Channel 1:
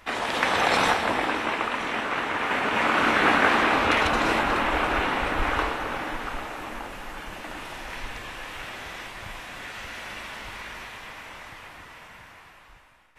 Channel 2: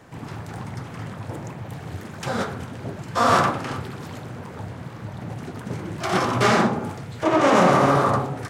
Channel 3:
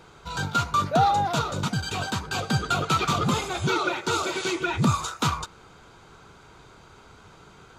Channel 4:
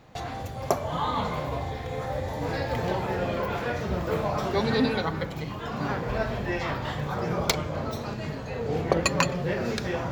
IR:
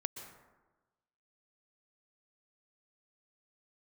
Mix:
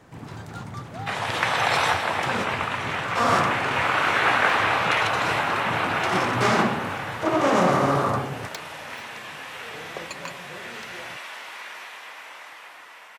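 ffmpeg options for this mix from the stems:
-filter_complex "[0:a]highpass=510,adelay=1000,volume=0.5dB[a];[1:a]volume=-3.5dB[b];[2:a]volume=-18.5dB[c];[3:a]highpass=f=230:p=1,adelay=1050,volume=-12.5dB[d];[a][b][c][d]amix=inputs=4:normalize=0"

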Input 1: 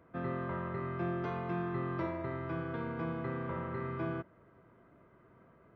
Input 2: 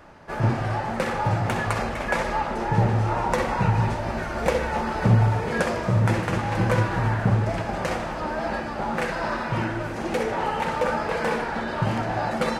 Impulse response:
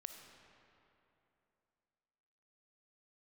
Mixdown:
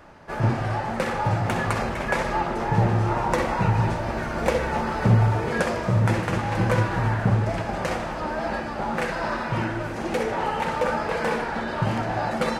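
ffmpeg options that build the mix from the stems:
-filter_complex "[0:a]aeval=exprs='val(0)*gte(abs(val(0)),0.00133)':c=same,adelay=1350,volume=2dB[a];[1:a]volume=0dB[b];[a][b]amix=inputs=2:normalize=0"

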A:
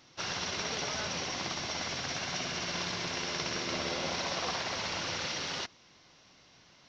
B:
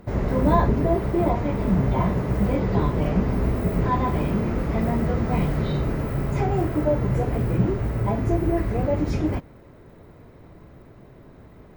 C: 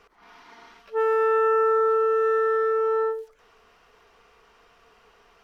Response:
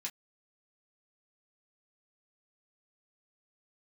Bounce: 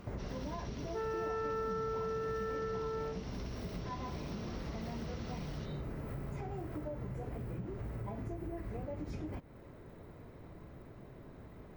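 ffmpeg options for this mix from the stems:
-filter_complex "[0:a]volume=-12.5dB[a];[1:a]acompressor=threshold=-25dB:ratio=6,volume=-5dB[b];[2:a]volume=-5dB[c];[a][b][c]amix=inputs=3:normalize=0,acompressor=threshold=-44dB:ratio=2"

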